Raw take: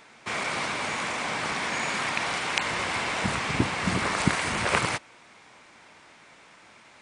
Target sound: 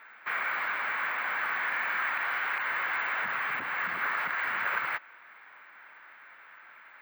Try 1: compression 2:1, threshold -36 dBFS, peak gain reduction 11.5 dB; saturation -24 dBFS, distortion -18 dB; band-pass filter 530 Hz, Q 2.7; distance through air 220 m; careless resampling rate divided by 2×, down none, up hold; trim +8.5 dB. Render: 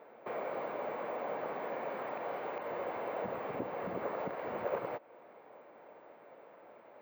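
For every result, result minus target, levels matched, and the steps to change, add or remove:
500 Hz band +20.0 dB; compression: peak gain reduction +5.5 dB
change: band-pass filter 1.6 kHz, Q 2.7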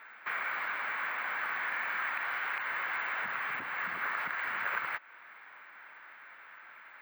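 compression: peak gain reduction +5.5 dB
change: compression 2:1, threshold -25.5 dBFS, peak gain reduction 6 dB

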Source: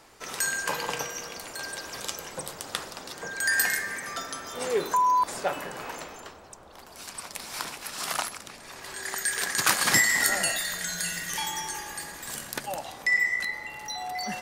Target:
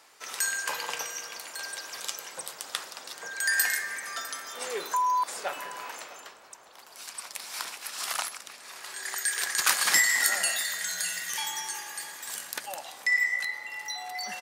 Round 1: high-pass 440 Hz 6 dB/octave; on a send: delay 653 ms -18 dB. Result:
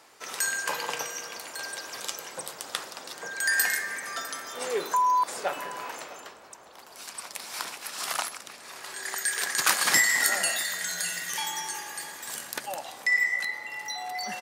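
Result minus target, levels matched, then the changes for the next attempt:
500 Hz band +4.0 dB
change: high-pass 1.1 kHz 6 dB/octave

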